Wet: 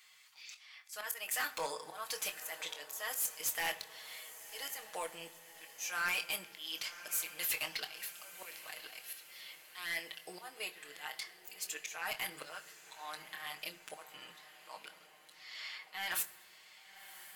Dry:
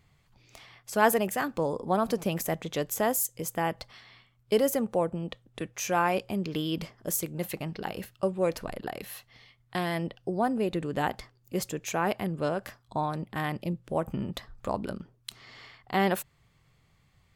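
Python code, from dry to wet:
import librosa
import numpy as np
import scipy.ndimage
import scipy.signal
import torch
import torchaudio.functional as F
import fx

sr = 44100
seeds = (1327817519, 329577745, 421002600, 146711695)

p1 = scipy.signal.sosfilt(scipy.signal.butter(2, 1500.0, 'highpass', fs=sr, output='sos'), x)
p2 = fx.high_shelf(p1, sr, hz=2200.0, db=7.0)
p3 = p2 + 0.73 * np.pad(p2, (int(6.4 * sr / 1000.0), 0))[:len(p2)]
p4 = fx.level_steps(p3, sr, step_db=22)
p5 = p3 + (p4 * librosa.db_to_amplitude(-2.0))
p6 = fx.auto_swell(p5, sr, attack_ms=579.0)
p7 = 10.0 ** (-33.5 / 20.0) * np.tanh(p6 / 10.0 ** (-33.5 / 20.0))
p8 = fx.chorus_voices(p7, sr, voices=4, hz=0.84, base_ms=25, depth_ms=2.9, mix_pct=25)
p9 = p8 + fx.echo_diffused(p8, sr, ms=1088, feedback_pct=52, wet_db=-14.5, dry=0)
p10 = fx.rev_fdn(p9, sr, rt60_s=1.4, lf_ratio=1.35, hf_ratio=0.6, size_ms=40.0, drr_db=13.5)
y = p10 * librosa.db_to_amplitude(6.0)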